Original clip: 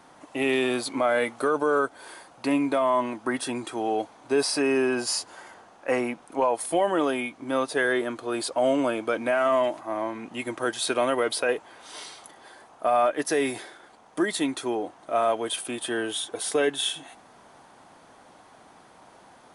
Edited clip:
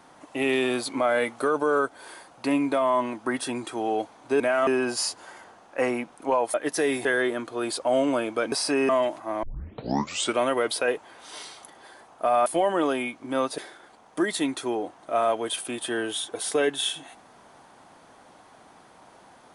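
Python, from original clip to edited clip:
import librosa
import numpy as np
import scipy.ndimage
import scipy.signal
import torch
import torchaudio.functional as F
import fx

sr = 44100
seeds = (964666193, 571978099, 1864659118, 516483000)

y = fx.edit(x, sr, fx.swap(start_s=4.4, length_s=0.37, other_s=9.23, other_length_s=0.27),
    fx.swap(start_s=6.64, length_s=1.12, other_s=13.07, other_length_s=0.51),
    fx.tape_start(start_s=10.04, length_s=0.94), tone=tone)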